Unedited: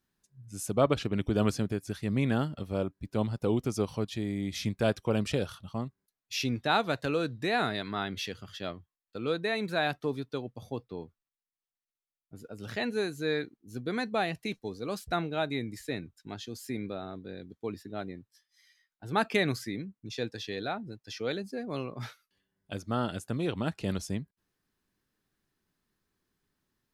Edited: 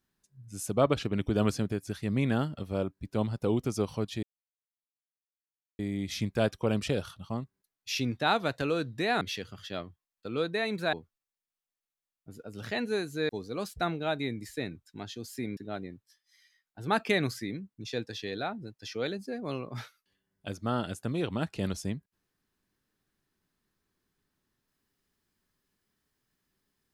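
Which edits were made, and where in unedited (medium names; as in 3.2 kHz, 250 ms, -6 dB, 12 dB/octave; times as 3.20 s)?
4.23 s: insert silence 1.56 s
7.65–8.11 s: delete
9.83–10.98 s: delete
13.34–14.60 s: delete
16.88–17.82 s: delete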